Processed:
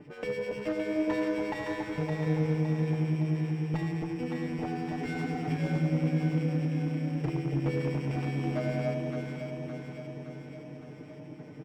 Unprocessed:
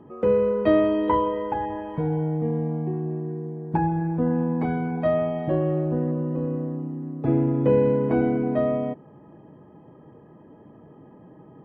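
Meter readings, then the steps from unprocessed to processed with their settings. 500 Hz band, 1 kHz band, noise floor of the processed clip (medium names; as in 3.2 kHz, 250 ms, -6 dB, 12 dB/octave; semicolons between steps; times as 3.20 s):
-11.0 dB, -11.0 dB, -46 dBFS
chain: sorted samples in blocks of 16 samples; spectral replace 5.00–5.57 s, 250–1300 Hz before; peaking EQ 3.3 kHz -2 dB; comb 6.7 ms, depth 76%; compression 6:1, threshold -26 dBFS, peak gain reduction 14.5 dB; harmonic tremolo 9.9 Hz, crossover 1.7 kHz; wavefolder -23.5 dBFS; distance through air 300 m; echo whose repeats swap between lows and highs 282 ms, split 830 Hz, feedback 77%, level -2 dB; sliding maximum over 3 samples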